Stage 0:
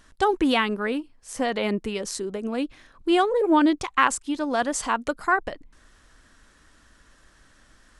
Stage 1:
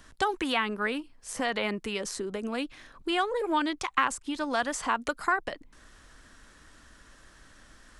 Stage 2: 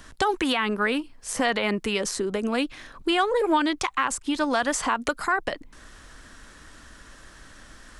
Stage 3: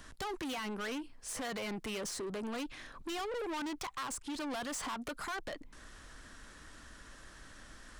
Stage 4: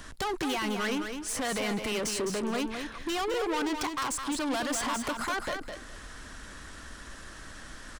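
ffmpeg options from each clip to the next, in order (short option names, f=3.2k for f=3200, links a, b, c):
-filter_complex "[0:a]acrossover=split=120|920|2300[a][b][c][d];[a]acompressor=threshold=-53dB:ratio=4[e];[b]acompressor=threshold=-35dB:ratio=4[f];[c]acompressor=threshold=-29dB:ratio=4[g];[d]acompressor=threshold=-38dB:ratio=4[h];[e][f][g][h]amix=inputs=4:normalize=0,volume=2dB"
-af "alimiter=limit=-20dB:level=0:latency=1:release=72,volume=7dB"
-af "asoftclip=type=tanh:threshold=-31dB,volume=-5.5dB"
-af "aecho=1:1:209|418|627:0.473|0.0899|0.0171,volume=7.5dB"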